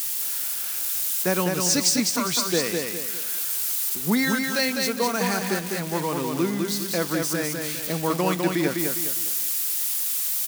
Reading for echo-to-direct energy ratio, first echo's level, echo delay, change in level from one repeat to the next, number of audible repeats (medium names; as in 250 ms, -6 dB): -3.5 dB, -4.0 dB, 203 ms, -8.5 dB, 4